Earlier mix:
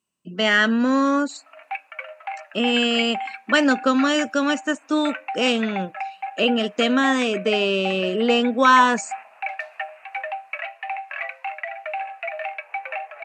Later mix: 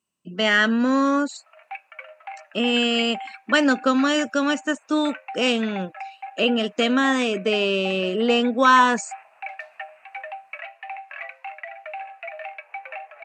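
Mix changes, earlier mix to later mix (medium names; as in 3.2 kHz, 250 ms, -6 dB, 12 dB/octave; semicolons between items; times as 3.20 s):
background -5.0 dB; reverb: off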